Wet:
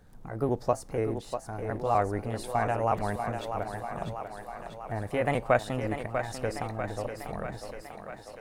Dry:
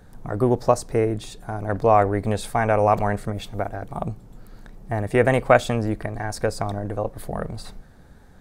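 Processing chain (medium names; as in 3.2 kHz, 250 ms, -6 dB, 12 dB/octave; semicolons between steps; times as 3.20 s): pitch shift switched off and on +1.5 st, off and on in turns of 243 ms; crackle 230 per s -53 dBFS; thinning echo 644 ms, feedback 67%, high-pass 240 Hz, level -7 dB; trim -8.5 dB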